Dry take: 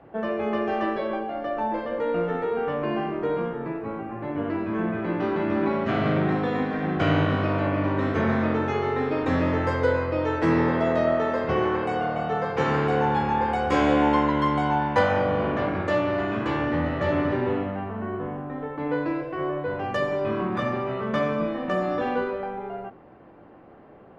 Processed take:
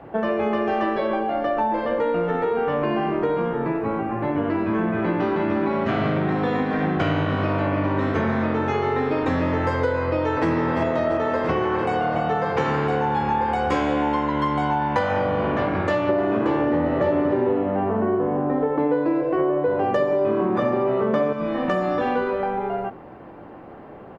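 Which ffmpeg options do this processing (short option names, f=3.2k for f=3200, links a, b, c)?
-filter_complex "[0:a]asplit=2[a][b];[b]afade=t=in:st=10.02:d=0.01,afade=t=out:st=10.49:d=0.01,aecho=0:1:340|680|1020|1360|1700|2040|2380|2720|3060|3400:0.595662|0.38718|0.251667|0.163584|0.106329|0.0691141|0.0449242|0.0292007|0.0189805|0.0123373[c];[a][c]amix=inputs=2:normalize=0,asettb=1/sr,asplit=3[d][e][f];[d]atrim=end=16.094[g];[e]atrim=start=16.09:end=21.33,asetpts=PTS-STARTPTS,afade=t=in:d=0.004:c=qsin,afade=t=out:st=5.236:d=0.004:c=qsin,equalizer=f=430:t=o:w=2.4:g=12[h];[f]atrim=start=21.326[i];[g][h]acrossfade=d=0.004:c1=hsin:c2=qsin[j];[j][i]acrossfade=d=0.004:c1=qsin:c2=hsin,equalizer=f=900:w=4.1:g=2.5,acompressor=threshold=-27dB:ratio=6,volume=8dB"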